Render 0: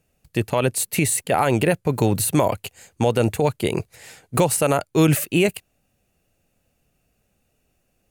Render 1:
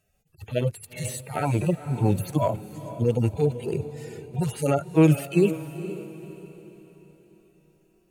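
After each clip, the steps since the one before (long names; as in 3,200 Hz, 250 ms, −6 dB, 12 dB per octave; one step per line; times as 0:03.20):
harmonic-percussive split with one part muted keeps harmonic
feedback delay with all-pass diffusion 471 ms, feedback 42%, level −13 dB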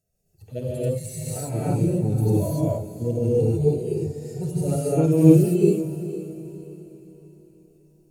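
flat-topped bell 1,700 Hz −12.5 dB 2.4 octaves
reverb whose tail is shaped and stops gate 320 ms rising, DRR −7.5 dB
level −5.5 dB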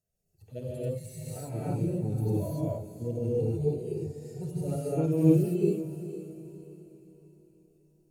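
dynamic equaliser 8,100 Hz, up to −5 dB, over −50 dBFS, Q 0.87
level −8 dB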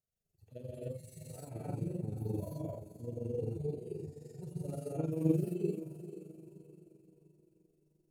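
amplitude modulation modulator 23 Hz, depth 45%
level −6 dB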